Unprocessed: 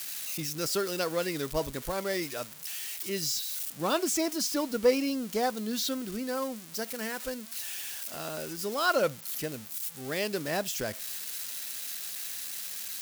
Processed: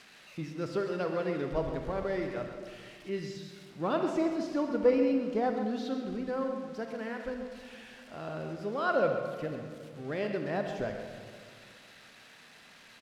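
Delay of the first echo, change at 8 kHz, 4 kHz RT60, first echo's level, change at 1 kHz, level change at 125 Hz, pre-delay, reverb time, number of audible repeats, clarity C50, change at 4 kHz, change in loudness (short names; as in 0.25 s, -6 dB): 0.133 s, under -20 dB, 1.4 s, -10.5 dB, -1.5 dB, +1.5 dB, 29 ms, 1.9 s, 1, 4.5 dB, -13.5 dB, -1.5 dB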